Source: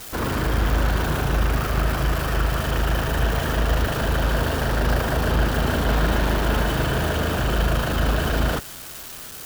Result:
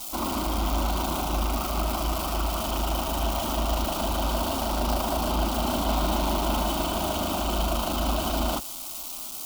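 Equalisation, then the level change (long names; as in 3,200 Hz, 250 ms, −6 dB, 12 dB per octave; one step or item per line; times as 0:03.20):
parametric band 92 Hz −3.5 dB
low-shelf EQ 310 Hz −5.5 dB
phaser with its sweep stopped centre 460 Hz, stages 6
+2.0 dB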